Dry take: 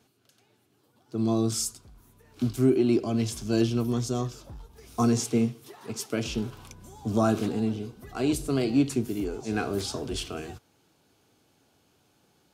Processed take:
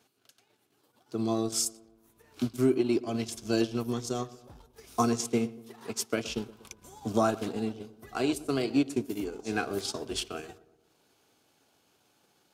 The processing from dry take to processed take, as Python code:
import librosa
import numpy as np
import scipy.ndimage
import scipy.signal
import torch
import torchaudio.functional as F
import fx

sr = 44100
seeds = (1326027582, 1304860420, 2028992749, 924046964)

y = fx.low_shelf(x, sr, hz=250.0, db=-11.0)
y = fx.transient(y, sr, attack_db=4, sustain_db=-11)
y = fx.echo_filtered(y, sr, ms=119, feedback_pct=57, hz=1300.0, wet_db=-17.5)